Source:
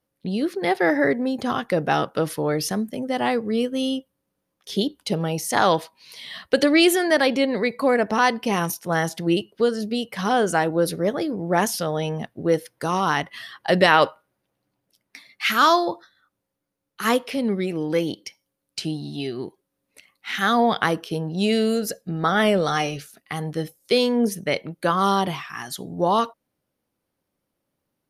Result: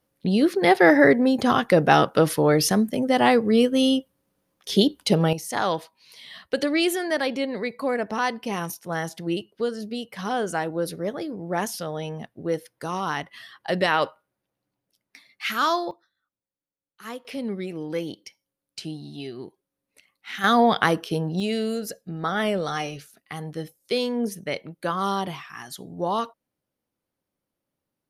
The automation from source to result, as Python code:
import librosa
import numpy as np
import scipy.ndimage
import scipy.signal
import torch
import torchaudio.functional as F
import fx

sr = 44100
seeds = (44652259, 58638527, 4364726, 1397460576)

y = fx.gain(x, sr, db=fx.steps((0.0, 4.5), (5.33, -6.0), (15.91, -16.0), (17.25, -6.5), (20.44, 1.0), (21.4, -5.5)))